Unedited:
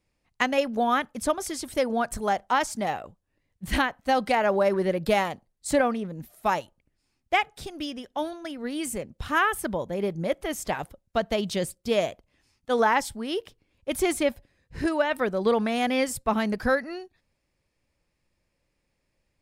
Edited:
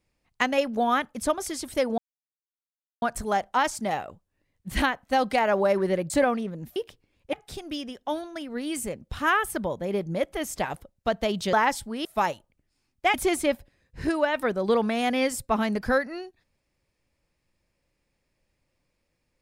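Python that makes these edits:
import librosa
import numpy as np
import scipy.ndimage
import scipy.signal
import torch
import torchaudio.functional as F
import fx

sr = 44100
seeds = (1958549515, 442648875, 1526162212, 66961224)

y = fx.edit(x, sr, fx.insert_silence(at_s=1.98, length_s=1.04),
    fx.cut(start_s=5.06, length_s=0.61),
    fx.swap(start_s=6.33, length_s=1.09, other_s=13.34, other_length_s=0.57),
    fx.cut(start_s=11.62, length_s=1.2), tone=tone)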